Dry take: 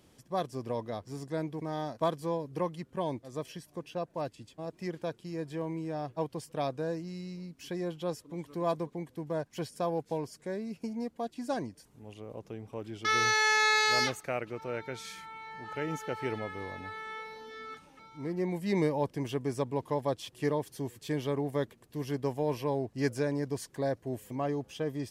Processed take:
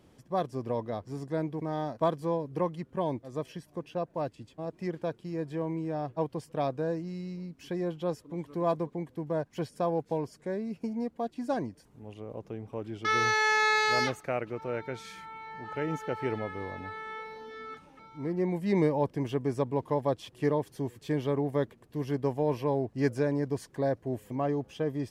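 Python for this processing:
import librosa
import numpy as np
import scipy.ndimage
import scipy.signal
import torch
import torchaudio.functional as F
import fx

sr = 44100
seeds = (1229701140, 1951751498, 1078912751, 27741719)

y = fx.high_shelf(x, sr, hz=2800.0, db=-9.5)
y = F.gain(torch.from_numpy(y), 3.0).numpy()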